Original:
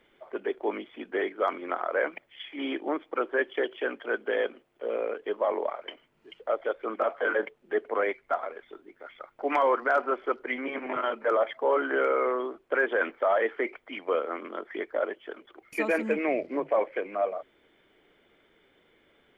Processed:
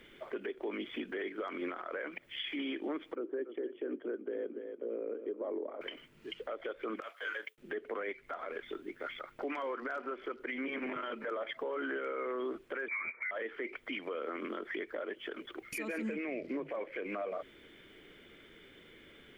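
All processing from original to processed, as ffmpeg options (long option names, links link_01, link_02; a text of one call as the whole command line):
ffmpeg -i in.wav -filter_complex "[0:a]asettb=1/sr,asplit=3[link_01][link_02][link_03];[link_01]atrim=end=3.154[link_04];[link_02]atrim=start=3.15:end=5.81,asetpts=PTS-STARTPTS,afade=type=in:duration=0.004:curve=qsin,afade=type=out:start_time=2.656:duration=0.004:curve=qsin,bandpass=frequency=320:width_type=q:width=1.9,aecho=1:1:283:0.158,atrim=end_sample=117306[link_05];[link_03]atrim=start=5.806[link_06];[link_04][link_05]acrossfade=duration=0.004:curve1=hsin:curve2=qsin[link_07];[link_07][link_06]acrossfade=duration=0.004:curve1=qsin:curve2=hsin,asettb=1/sr,asplit=3[link_08][link_09][link_10];[link_08]atrim=end=7.004[link_11];[link_09]atrim=start=7:end=7.58,asetpts=PTS-STARTPTS,afade=type=in:duration=0.004:curve=qsin,afade=type=out:start_time=0.576:duration=0.004:curve=qsin,agate=range=-33dB:threshold=-51dB:ratio=3:release=100:detection=peak,aderivative[link_12];[link_10]atrim=start=7.576[link_13];[link_11][link_12]acrossfade=duration=0.004:curve1=hsin:curve2=qsin[link_14];[link_14][link_13]acrossfade=duration=0.004:curve1=qsin:curve2=hsin,asettb=1/sr,asplit=3[link_15][link_16][link_17];[link_15]atrim=end=12.884[link_18];[link_16]atrim=start=12.88:end=13.31,asetpts=PTS-STARTPTS,afade=type=in:duration=0.004:curve=qsin,afade=type=out:start_time=0.426:duration=0.004:curve=qsin,highpass=frequency=350:width_type=q:width=2.2,aecho=1:1:7.3:0.45,atrim=end_sample=18963,lowpass=frequency=2300:width_type=q:width=0.5098,lowpass=frequency=2300:width_type=q:width=0.6013,lowpass=frequency=2300:width_type=q:width=0.9,lowpass=frequency=2300:width_type=q:width=2.563,afreqshift=-2700[link_19];[link_17]atrim=start=13.306[link_20];[link_18][link_19]acrossfade=duration=0.004:curve1=hsin:curve2=qsin[link_21];[link_21][link_20]acrossfade=duration=0.004:curve1=qsin:curve2=hsin,equalizer=frequency=790:width=1.1:gain=-11,acompressor=threshold=-39dB:ratio=4,alimiter=level_in=15dB:limit=-24dB:level=0:latency=1:release=89,volume=-15dB,volume=9.5dB" out.wav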